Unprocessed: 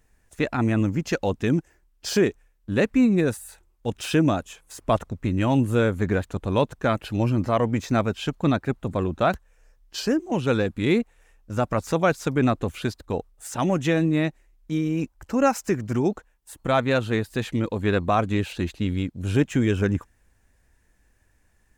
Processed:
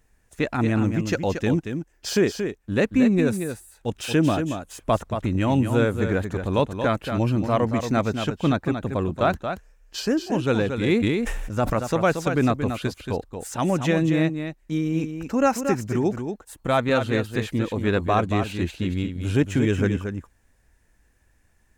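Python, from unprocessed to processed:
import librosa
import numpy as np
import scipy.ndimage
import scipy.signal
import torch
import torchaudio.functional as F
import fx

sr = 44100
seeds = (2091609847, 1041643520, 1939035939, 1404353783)

y = x + 10.0 ** (-7.5 / 20.0) * np.pad(x, (int(229 * sr / 1000.0), 0))[:len(x)]
y = fx.sustainer(y, sr, db_per_s=24.0, at=(11.01, 11.77), fade=0.02)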